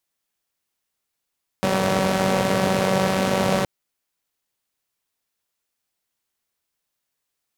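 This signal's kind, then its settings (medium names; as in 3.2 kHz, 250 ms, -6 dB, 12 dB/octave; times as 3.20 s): four-cylinder engine model, steady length 2.02 s, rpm 5700, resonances 150/220/480 Hz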